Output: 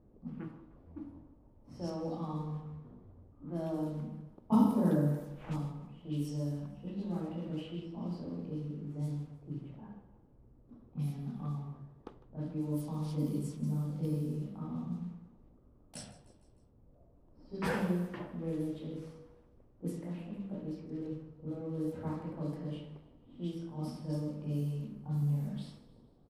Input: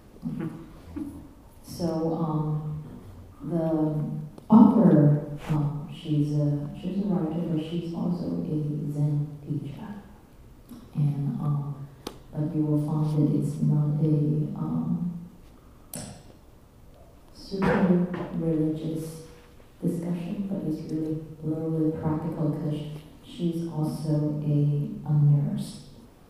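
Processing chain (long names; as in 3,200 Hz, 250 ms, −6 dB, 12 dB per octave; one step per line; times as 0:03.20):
first-order pre-emphasis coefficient 0.8
low-pass that shuts in the quiet parts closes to 510 Hz, open at −33 dBFS
repeating echo 153 ms, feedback 51%, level −18 dB
level +3 dB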